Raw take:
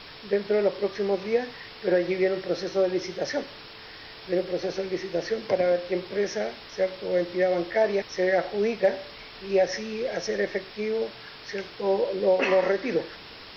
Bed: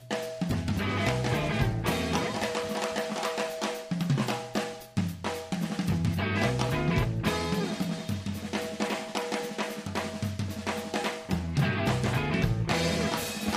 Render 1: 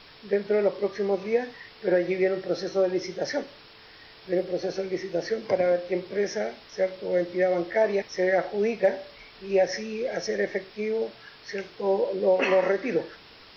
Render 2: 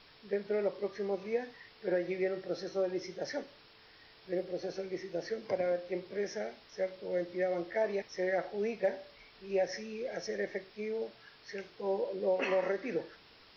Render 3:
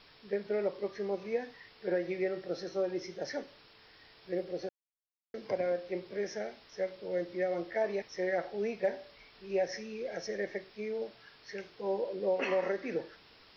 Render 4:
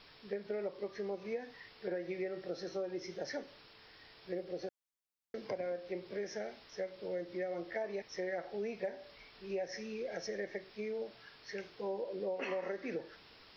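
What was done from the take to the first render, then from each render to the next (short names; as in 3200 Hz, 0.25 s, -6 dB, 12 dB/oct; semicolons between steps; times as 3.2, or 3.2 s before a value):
noise print and reduce 6 dB
gain -9 dB
4.69–5.34 mute
compressor 3:1, threshold -37 dBFS, peak gain reduction 9.5 dB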